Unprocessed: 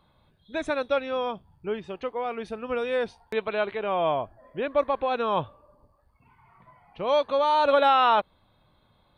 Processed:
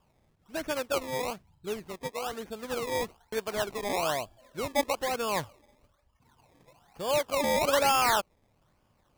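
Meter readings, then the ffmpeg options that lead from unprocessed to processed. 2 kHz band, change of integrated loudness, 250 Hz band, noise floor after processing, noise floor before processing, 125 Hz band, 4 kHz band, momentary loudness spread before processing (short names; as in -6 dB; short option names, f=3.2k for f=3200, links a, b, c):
-0.5 dB, -4.0 dB, -2.5 dB, -70 dBFS, -65 dBFS, 0.0 dB, +0.5 dB, 14 LU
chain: -af "acrusher=samples=21:mix=1:aa=0.000001:lfo=1:lforange=21:lforate=1.1,volume=-4.5dB"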